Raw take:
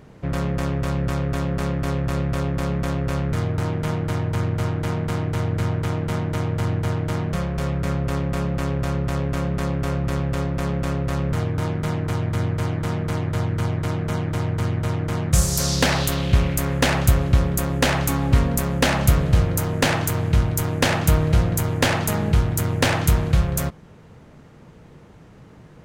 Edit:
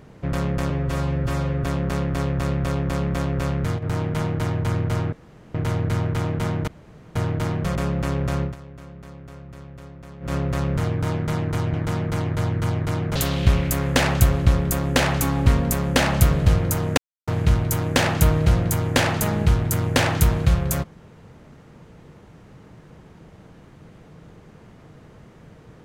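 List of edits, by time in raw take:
0.70–1.33 s: stretch 1.5×
3.04–3.94 s: dip -9.5 dB, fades 0.43 s logarithmic
4.81–5.23 s: room tone
6.36–6.84 s: room tone
7.44–8.31 s: delete
8.98–10.89 s: dip -17 dB, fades 0.13 s
12.29–12.70 s: delete
14.12–16.02 s: delete
19.84–20.14 s: mute

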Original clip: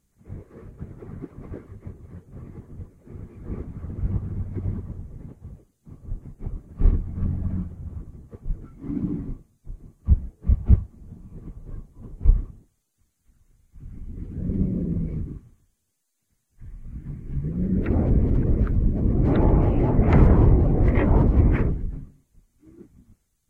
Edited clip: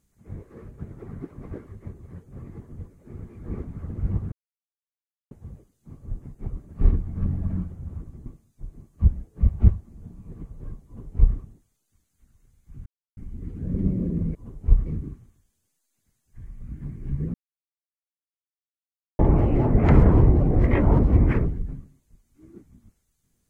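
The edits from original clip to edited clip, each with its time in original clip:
4.32–5.31 s: mute
8.26–9.32 s: delete
11.92–12.43 s: copy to 15.10 s
13.92 s: insert silence 0.31 s
17.58–19.43 s: mute

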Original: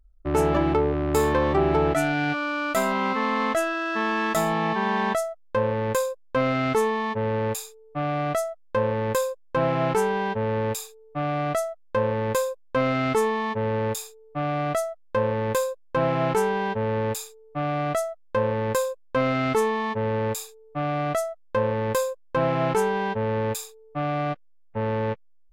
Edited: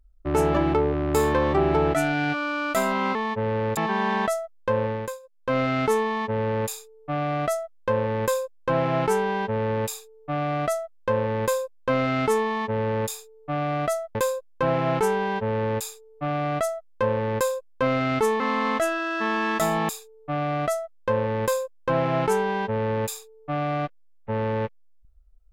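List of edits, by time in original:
3.15–4.64 s: swap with 19.74–20.36 s
5.72–6.44 s: dip -19 dB, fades 0.34 s
15.02–15.49 s: delete

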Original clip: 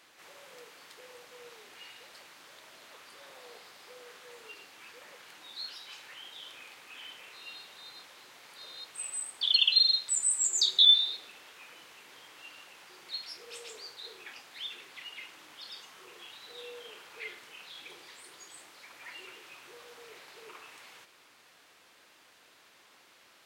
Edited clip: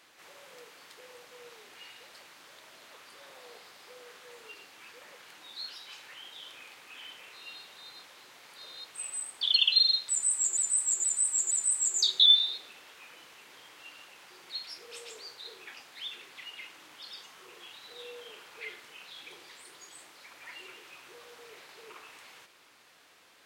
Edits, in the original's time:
10.10–10.57 s: loop, 4 plays

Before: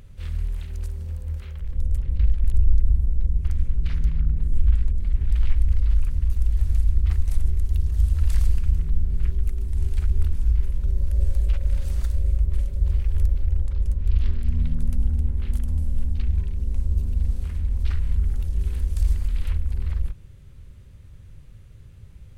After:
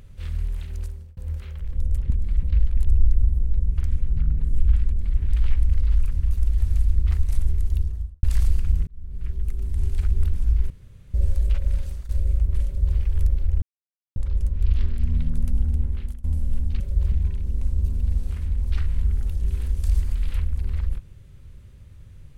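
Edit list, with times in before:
0.80–1.17 s: fade out
3.84–4.16 s: delete
4.86–5.19 s: copy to 2.10 s
7.67–8.22 s: studio fade out
8.86–9.66 s: fade in
10.69–11.13 s: room tone
11.70–12.08 s: fade out, to -17.5 dB
12.65–12.97 s: copy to 16.25 s
13.61 s: insert silence 0.54 s
15.33–15.69 s: fade out, to -22.5 dB

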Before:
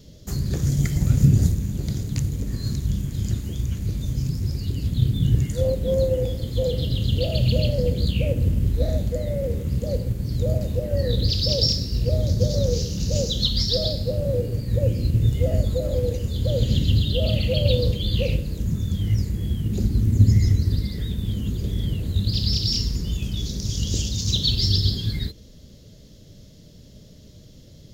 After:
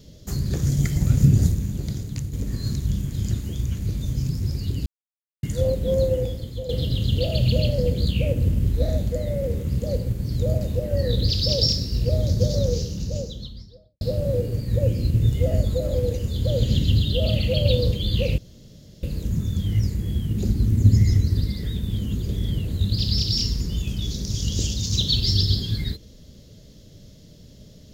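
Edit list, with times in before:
1.62–2.33 s: fade out, to -6.5 dB
4.86–5.43 s: mute
6.13–6.69 s: fade out, to -11.5 dB
12.43–14.01 s: studio fade out
18.38 s: insert room tone 0.65 s

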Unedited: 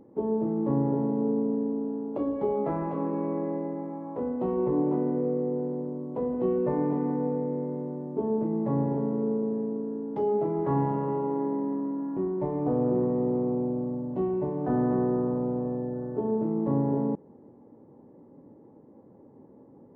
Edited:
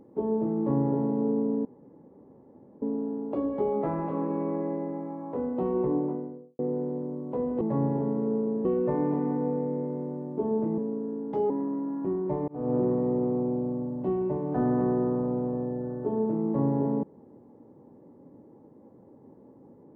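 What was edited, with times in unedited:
1.65 s: insert room tone 1.17 s
4.57–5.42 s: studio fade out
8.57–9.61 s: move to 6.44 s
10.33–11.62 s: delete
12.60–12.87 s: fade in

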